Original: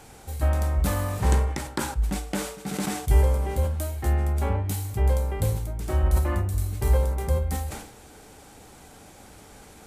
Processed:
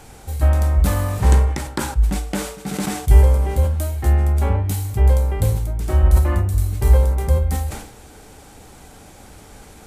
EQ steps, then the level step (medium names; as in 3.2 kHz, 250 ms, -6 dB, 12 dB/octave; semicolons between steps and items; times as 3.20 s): bass shelf 83 Hz +6.5 dB; +4.0 dB